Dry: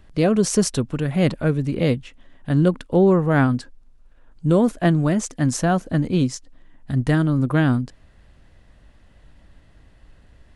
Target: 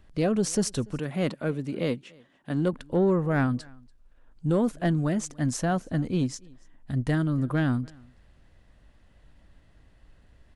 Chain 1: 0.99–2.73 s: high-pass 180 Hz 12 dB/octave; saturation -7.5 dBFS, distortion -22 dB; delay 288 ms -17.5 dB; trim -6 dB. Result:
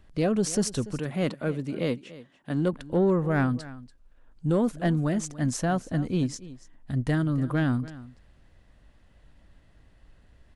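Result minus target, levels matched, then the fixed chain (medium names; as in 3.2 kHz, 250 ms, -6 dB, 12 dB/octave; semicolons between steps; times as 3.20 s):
echo-to-direct +9 dB
0.99–2.73 s: high-pass 180 Hz 12 dB/octave; saturation -7.5 dBFS, distortion -22 dB; delay 288 ms -26.5 dB; trim -6 dB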